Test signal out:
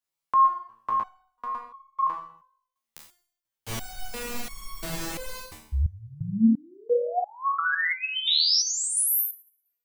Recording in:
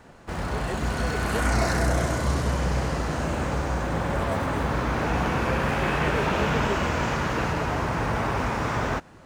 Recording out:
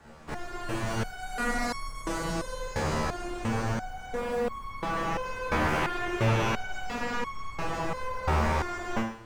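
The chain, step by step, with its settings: Schroeder reverb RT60 0.58 s, combs from 27 ms, DRR 2.5 dB; frequency shift -36 Hz; stepped resonator 2.9 Hz 77–1100 Hz; gain +6.5 dB

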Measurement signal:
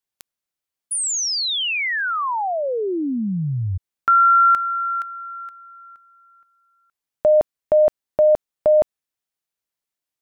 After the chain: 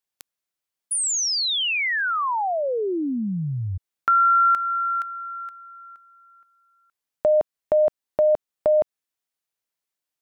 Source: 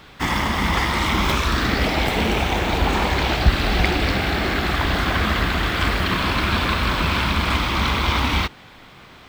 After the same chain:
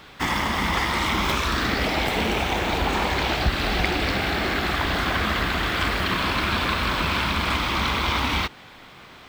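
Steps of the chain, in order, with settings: low shelf 200 Hz -5 dB; in parallel at 0 dB: compressor, threshold -22 dBFS; on the sum: gain -6 dB

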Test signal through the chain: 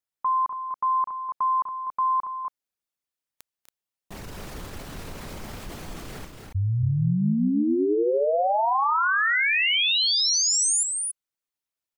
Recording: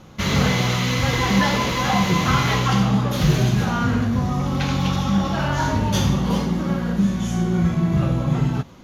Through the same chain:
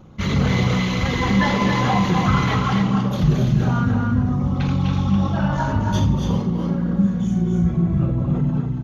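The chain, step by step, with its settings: formant sharpening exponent 1.5; loudspeakers at several distances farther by 85 m -10 dB, 96 m -6 dB

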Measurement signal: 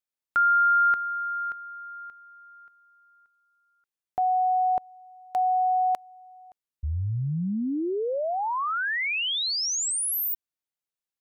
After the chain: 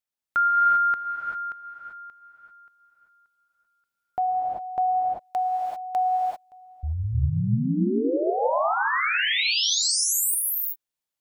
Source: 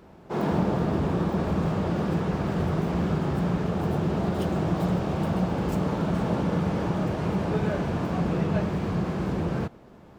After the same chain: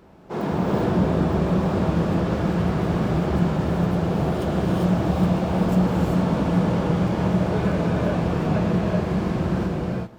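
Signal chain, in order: non-linear reverb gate 0.42 s rising, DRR -1.5 dB

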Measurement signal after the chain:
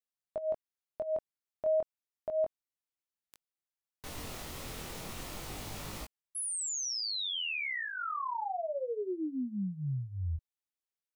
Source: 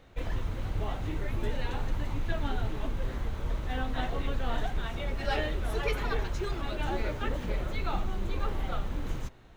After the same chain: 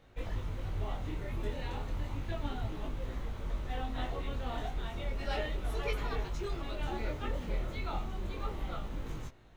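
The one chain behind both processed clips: dynamic EQ 1600 Hz, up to -6 dB, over -57 dBFS, Q 7.5; chorus 0.33 Hz, delay 19 ms, depth 5.2 ms; gain -1.5 dB

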